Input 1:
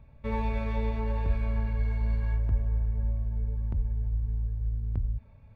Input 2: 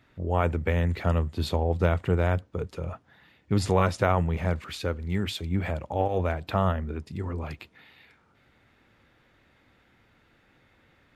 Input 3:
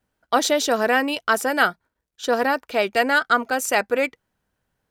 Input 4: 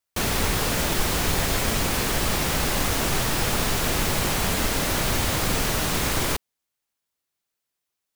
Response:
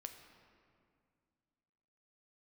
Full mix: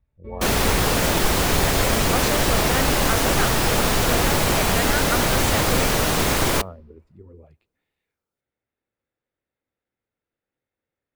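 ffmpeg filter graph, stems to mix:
-filter_complex "[0:a]volume=0.447[s0];[1:a]equalizer=f=480:w=1.3:g=8,volume=0.168,asplit=2[s1][s2];[s2]volume=0.224[s3];[2:a]adelay=1800,volume=0.355,asplit=2[s4][s5];[s5]volume=0.0794[s6];[3:a]equalizer=f=550:t=o:w=2.4:g=3,adelay=250,volume=1.33,asplit=2[s7][s8];[s8]volume=0.158[s9];[4:a]atrim=start_sample=2205[s10];[s3][s9]amix=inputs=2:normalize=0[s11];[s11][s10]afir=irnorm=-1:irlink=0[s12];[s6]aecho=0:1:395|790|1185|1580|1975|2370:1|0.44|0.194|0.0852|0.0375|0.0165[s13];[s0][s1][s4][s7][s12][s13]amix=inputs=6:normalize=0,afftdn=nr=14:nf=-39"

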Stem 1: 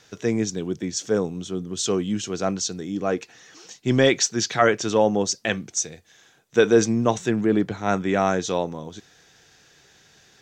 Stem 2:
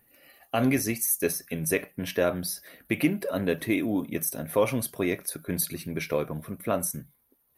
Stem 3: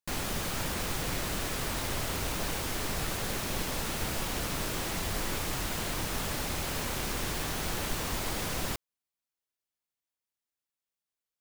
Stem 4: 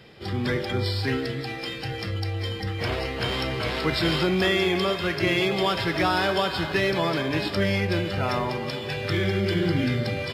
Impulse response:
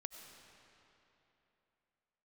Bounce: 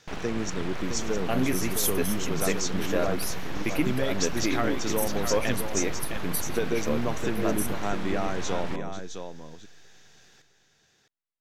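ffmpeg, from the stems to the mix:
-filter_complex "[0:a]acompressor=threshold=0.0708:ratio=6,volume=0.708,asplit=2[s0][s1];[s1]volume=0.422[s2];[1:a]adelay=750,volume=0.708[s3];[2:a]lowpass=2300,aeval=exprs='abs(val(0))':c=same,volume=1,asplit=2[s4][s5];[s5]volume=0.299[s6];[4:a]atrim=start_sample=2205[s7];[s6][s7]afir=irnorm=-1:irlink=0[s8];[s2]aecho=0:1:661:1[s9];[s0][s3][s4][s8][s9]amix=inputs=5:normalize=0"

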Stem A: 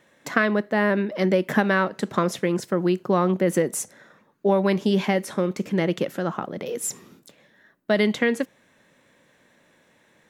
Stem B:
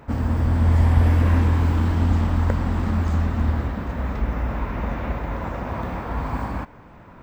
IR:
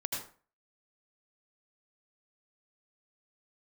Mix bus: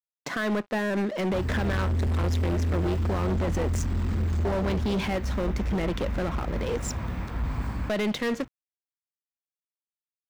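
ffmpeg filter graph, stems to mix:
-filter_complex "[0:a]lowpass=f=6400:w=0.5412,lowpass=f=6400:w=1.3066,alimiter=limit=0.15:level=0:latency=1:release=80,aeval=exprs='sgn(val(0))*max(abs(val(0))-0.00596,0)':c=same,volume=0.668,asplit=2[s0][s1];[1:a]equalizer=f=690:t=o:w=2.6:g=-12,adelay=1250,volume=0.501[s2];[s1]apad=whole_len=373921[s3];[s2][s3]sidechaincompress=threshold=0.0447:ratio=8:attack=16:release=759[s4];[s0][s4]amix=inputs=2:normalize=0,acontrast=53,asoftclip=type=hard:threshold=0.0708"

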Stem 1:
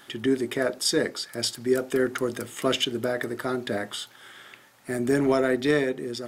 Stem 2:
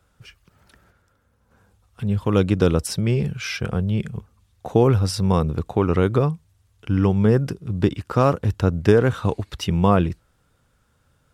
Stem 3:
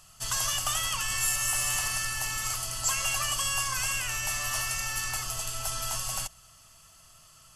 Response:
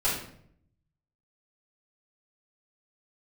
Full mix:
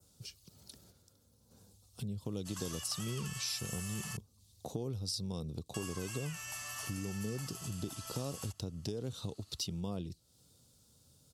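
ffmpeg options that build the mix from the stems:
-filter_complex "[1:a]firequalizer=gain_entry='entry(250,0);entry(1600,-18);entry(4200,9)':delay=0.05:min_phase=1,acompressor=threshold=0.0631:ratio=3,adynamicequalizer=threshold=0.00562:dfrequency=3700:dqfactor=1.1:tfrequency=3700:tqfactor=1.1:attack=5:release=100:ratio=0.375:range=2.5:mode=boostabove:tftype=bell,volume=0.841[s0];[2:a]adelay=2250,volume=0.562,asplit=3[s1][s2][s3];[s1]atrim=end=4.17,asetpts=PTS-STARTPTS,afade=t=out:st=4.166:d=0.004:c=hsin[s4];[s2]atrim=start=4.17:end=5.74,asetpts=PTS-STARTPTS,volume=0[s5];[s3]atrim=start=5.74,asetpts=PTS-STARTPTS,afade=t=in:d=0.004:c=hsin[s6];[s4][s5][s6]concat=n=3:v=0:a=1[s7];[s0][s7]amix=inputs=2:normalize=0,acompressor=threshold=0.00562:ratio=2,volume=1,highpass=85"

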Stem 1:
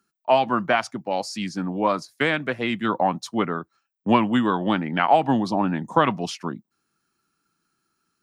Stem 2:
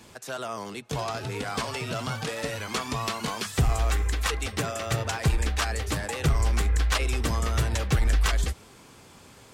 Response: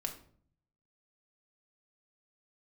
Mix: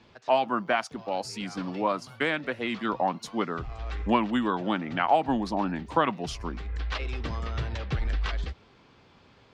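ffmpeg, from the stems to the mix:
-filter_complex "[0:a]highpass=170,agate=range=0.0224:threshold=0.00794:ratio=3:detection=peak,volume=0.562,asplit=2[s0][s1];[1:a]lowpass=f=4500:w=0.5412,lowpass=f=4500:w=1.3066,volume=0.501[s2];[s1]apad=whole_len=420452[s3];[s2][s3]sidechaincompress=threshold=0.0158:ratio=12:attack=32:release=671[s4];[s0][s4]amix=inputs=2:normalize=0"

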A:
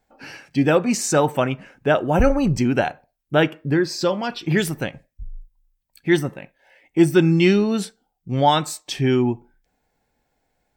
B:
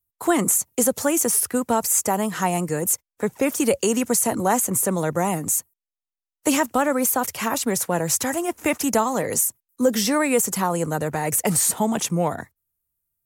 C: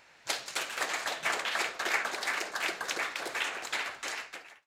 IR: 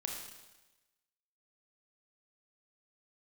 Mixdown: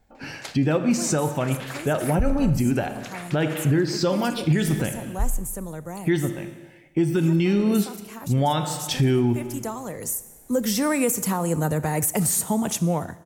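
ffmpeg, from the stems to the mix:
-filter_complex "[0:a]volume=0.841,asplit=2[s0][s1];[s1]volume=0.631[s2];[1:a]highshelf=f=10000:g=7,adelay=700,volume=0.158,asplit=2[s3][s4];[s4]volume=0.299[s5];[2:a]tremolo=f=0.62:d=0.83,adelay=150,volume=0.891[s6];[3:a]atrim=start_sample=2205[s7];[s2][s5]amix=inputs=2:normalize=0[s8];[s8][s7]afir=irnorm=-1:irlink=0[s9];[s0][s3][s6][s9]amix=inputs=4:normalize=0,lowshelf=f=210:g=10,dynaudnorm=f=210:g=11:m=3.76,alimiter=limit=0.251:level=0:latency=1:release=236"

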